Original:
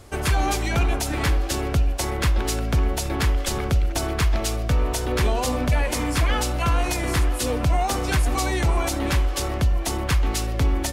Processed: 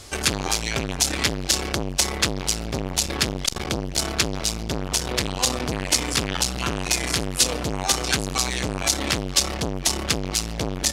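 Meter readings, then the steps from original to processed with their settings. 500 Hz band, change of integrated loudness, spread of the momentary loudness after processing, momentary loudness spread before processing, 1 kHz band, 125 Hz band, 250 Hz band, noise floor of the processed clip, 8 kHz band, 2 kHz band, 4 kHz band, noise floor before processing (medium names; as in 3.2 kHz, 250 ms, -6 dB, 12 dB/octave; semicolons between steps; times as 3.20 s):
-2.0 dB, +0.5 dB, 5 LU, 2 LU, -3.5 dB, -7.0 dB, -1.0 dB, -31 dBFS, +7.5 dB, +1.0 dB, +7.5 dB, -27 dBFS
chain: peaking EQ 5.3 kHz +14 dB 2.5 oct; transformer saturation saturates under 1.8 kHz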